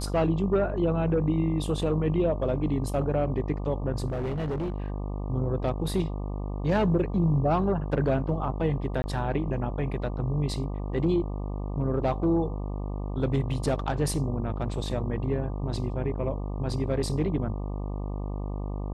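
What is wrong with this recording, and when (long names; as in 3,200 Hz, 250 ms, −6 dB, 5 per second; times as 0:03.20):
mains buzz 50 Hz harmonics 24 −32 dBFS
0:04.08–0:04.90: clipping −26.5 dBFS
0:09.02–0:09.04: drop-out 20 ms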